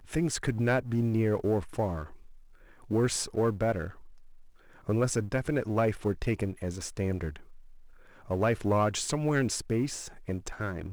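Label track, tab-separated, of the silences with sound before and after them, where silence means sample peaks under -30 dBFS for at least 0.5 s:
2.030000	2.910000	silence
3.870000	4.890000	silence
7.290000	8.310000	silence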